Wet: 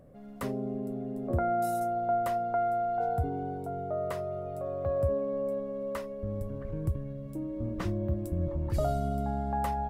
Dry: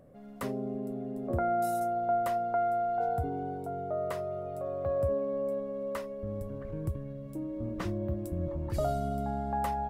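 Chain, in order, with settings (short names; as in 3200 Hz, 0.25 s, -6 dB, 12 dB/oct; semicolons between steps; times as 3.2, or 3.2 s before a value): low shelf 130 Hz +5.5 dB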